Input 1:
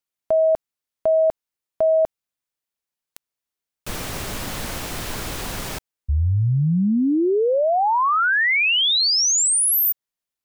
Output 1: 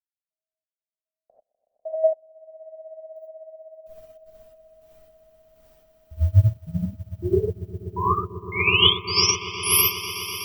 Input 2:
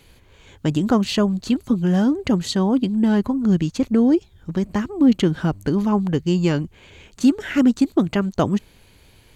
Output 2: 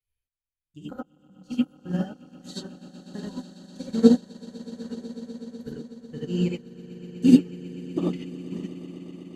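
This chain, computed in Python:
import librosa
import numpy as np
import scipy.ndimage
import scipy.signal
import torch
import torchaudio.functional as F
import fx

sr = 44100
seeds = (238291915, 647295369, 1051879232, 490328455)

y = fx.bin_expand(x, sr, power=1.5)
y = fx.step_gate(y, sr, bpm=81, pattern='x...x..xx.x..', floor_db=-60.0, edge_ms=4.5)
y = fx.echo_swell(y, sr, ms=124, loudest=8, wet_db=-12.0)
y = fx.rev_gated(y, sr, seeds[0], gate_ms=110, shape='rising', drr_db=-4.5)
y = fx.upward_expand(y, sr, threshold_db=-25.0, expansion=2.5)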